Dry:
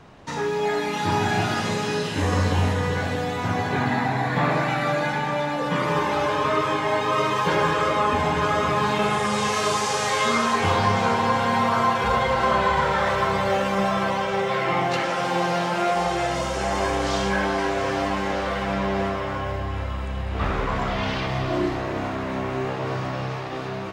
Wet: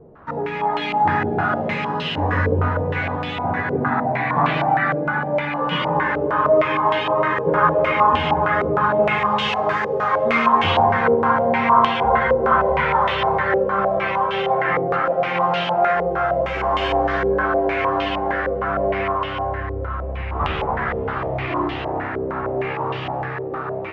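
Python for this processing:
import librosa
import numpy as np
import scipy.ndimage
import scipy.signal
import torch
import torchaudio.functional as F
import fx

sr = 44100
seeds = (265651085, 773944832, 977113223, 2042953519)

y = fx.doubler(x, sr, ms=13.0, db=-5.5)
y = fx.filter_held_lowpass(y, sr, hz=6.5, low_hz=470.0, high_hz=3000.0)
y = F.gain(torch.from_numpy(y), -1.5).numpy()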